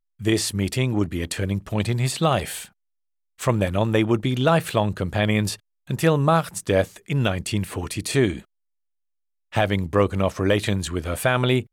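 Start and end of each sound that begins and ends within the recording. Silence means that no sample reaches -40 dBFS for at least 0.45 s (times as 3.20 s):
3.39–8.42 s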